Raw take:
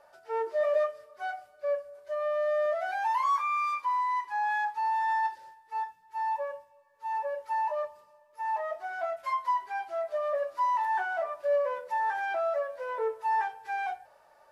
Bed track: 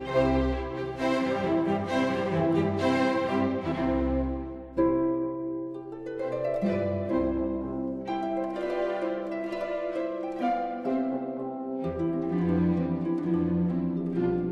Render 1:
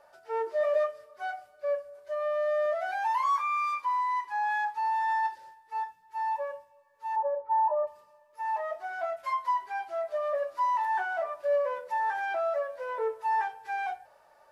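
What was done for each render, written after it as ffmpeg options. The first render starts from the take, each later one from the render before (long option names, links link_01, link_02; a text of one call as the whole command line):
ffmpeg -i in.wav -filter_complex "[0:a]asplit=3[link_01][link_02][link_03];[link_01]afade=type=out:start_time=7.15:duration=0.02[link_04];[link_02]lowpass=frequency=830:width_type=q:width=1.8,afade=type=in:start_time=7.15:duration=0.02,afade=type=out:start_time=7.86:duration=0.02[link_05];[link_03]afade=type=in:start_time=7.86:duration=0.02[link_06];[link_04][link_05][link_06]amix=inputs=3:normalize=0" out.wav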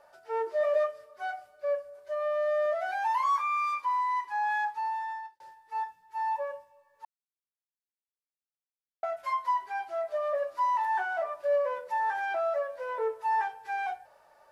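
ffmpeg -i in.wav -filter_complex "[0:a]asplit=4[link_01][link_02][link_03][link_04];[link_01]atrim=end=5.4,asetpts=PTS-STARTPTS,afade=type=out:start_time=4.64:duration=0.76[link_05];[link_02]atrim=start=5.4:end=7.05,asetpts=PTS-STARTPTS,afade=type=in:duration=0.004:curve=hsin,afade=type=out:start_time=1.646:duration=0.004:curve=hsin[link_06];[link_03]atrim=start=7.05:end=9.03,asetpts=PTS-STARTPTS,volume=0[link_07];[link_04]atrim=start=9.03,asetpts=PTS-STARTPTS,afade=type=in:duration=0.004:curve=hsin[link_08];[link_05][link_06][link_07][link_08]concat=n=4:v=0:a=1" out.wav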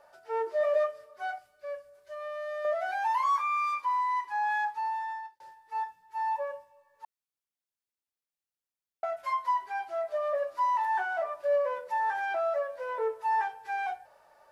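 ffmpeg -i in.wav -filter_complex "[0:a]asettb=1/sr,asplit=3[link_01][link_02][link_03];[link_01]atrim=end=1.384[link_04];[link_02]atrim=start=1.38:end=2.65,asetpts=PTS-STARTPTS,afade=type=in:duration=0.004:curve=qsin,afade=type=out:start_time=1.266:duration=0.004:curve=qsin,equalizer=frequency=670:width_type=o:width=2.1:gain=-9[link_05];[link_03]atrim=start=2.646[link_06];[link_04][link_05]acrossfade=duration=0.004:curve1=hsin:curve2=qsin[link_07];[link_07][link_06]acrossfade=duration=0.004:curve1=qsin:curve2=hsin" out.wav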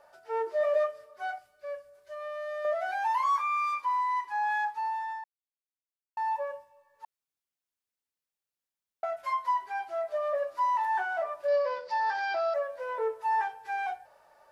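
ffmpeg -i in.wav -filter_complex "[0:a]asettb=1/sr,asplit=3[link_01][link_02][link_03];[link_01]atrim=end=11.484[link_04];[link_02]atrim=start=11.48:end=12.54,asetpts=PTS-STARTPTS,afade=type=in:duration=0.004:curve=qsin,afade=type=out:start_time=1.056:duration=0.004:curve=qsin,lowpass=frequency=4800:width_type=q:width=9.2[link_05];[link_03]atrim=start=12.536[link_06];[link_04][link_05]acrossfade=duration=0.004:curve1=hsin:curve2=qsin[link_07];[link_07][link_06]acrossfade=duration=0.004:curve1=qsin:curve2=hsin,asplit=3[link_08][link_09][link_10];[link_08]atrim=end=5.24,asetpts=PTS-STARTPTS,afade=type=out:start_time=5.236:duration=0.004:curve=hsin[link_11];[link_09]atrim=start=5.24:end=6.17,asetpts=PTS-STARTPTS,volume=0[link_12];[link_10]atrim=start=6.17,asetpts=PTS-STARTPTS,afade=type=in:duration=0.004:curve=hsin[link_13];[link_11][link_12][link_13]concat=n=3:v=0:a=1" out.wav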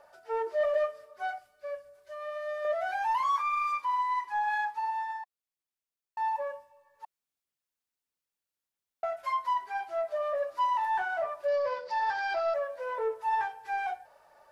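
ffmpeg -i in.wav -af "aphaser=in_gain=1:out_gain=1:delay=4.4:decay=0.21:speed=1.6:type=sinusoidal,asoftclip=type=tanh:threshold=-20.5dB" out.wav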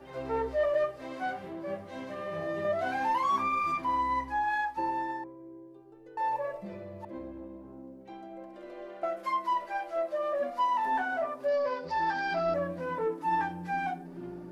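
ffmpeg -i in.wav -i bed.wav -filter_complex "[1:a]volume=-15dB[link_01];[0:a][link_01]amix=inputs=2:normalize=0" out.wav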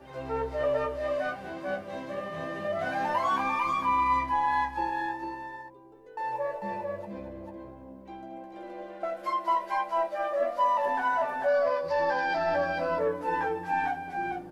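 ffmpeg -i in.wav -filter_complex "[0:a]asplit=2[link_01][link_02];[link_02]adelay=14,volume=-6.5dB[link_03];[link_01][link_03]amix=inputs=2:normalize=0,asplit=2[link_04][link_05];[link_05]aecho=0:1:226|446:0.282|0.668[link_06];[link_04][link_06]amix=inputs=2:normalize=0" out.wav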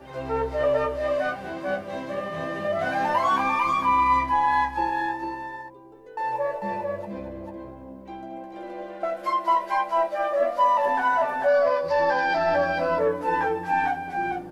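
ffmpeg -i in.wav -af "volume=5dB" out.wav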